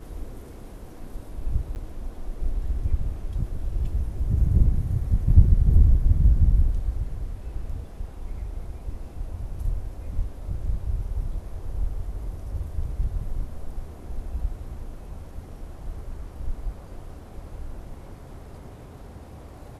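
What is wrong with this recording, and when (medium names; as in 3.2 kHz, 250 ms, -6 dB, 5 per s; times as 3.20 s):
1.75–1.76 s: dropout 9.8 ms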